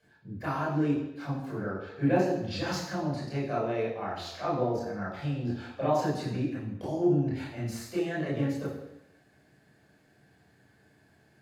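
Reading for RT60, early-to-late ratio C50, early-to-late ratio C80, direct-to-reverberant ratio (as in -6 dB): 0.85 s, 3.5 dB, 6.5 dB, -7.0 dB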